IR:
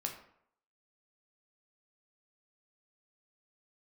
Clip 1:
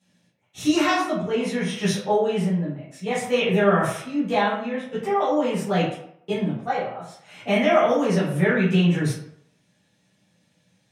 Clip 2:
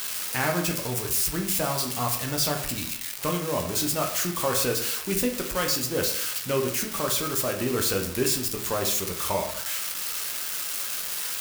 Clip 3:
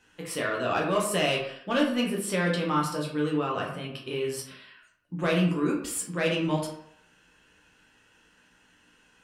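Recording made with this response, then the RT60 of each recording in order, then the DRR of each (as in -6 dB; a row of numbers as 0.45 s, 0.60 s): 2; 0.70 s, 0.70 s, 0.70 s; -11.5 dB, 1.5 dB, -3.0 dB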